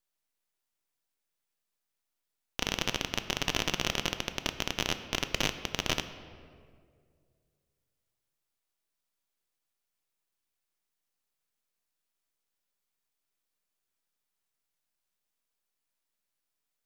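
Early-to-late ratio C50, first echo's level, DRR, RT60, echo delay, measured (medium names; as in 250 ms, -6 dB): 11.0 dB, no echo, 9.0 dB, 2.1 s, no echo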